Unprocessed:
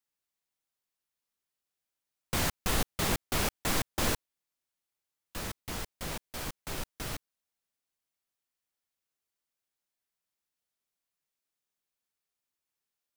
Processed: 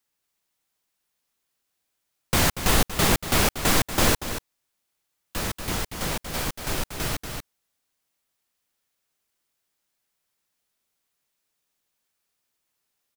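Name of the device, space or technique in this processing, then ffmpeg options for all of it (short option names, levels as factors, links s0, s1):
ducked delay: -filter_complex "[0:a]asplit=3[s0][s1][s2];[s1]adelay=236,volume=0.562[s3];[s2]apad=whole_len=590863[s4];[s3][s4]sidechaincompress=threshold=0.02:ratio=3:attack=9.3:release=695[s5];[s0][s5]amix=inputs=2:normalize=0,volume=2.82"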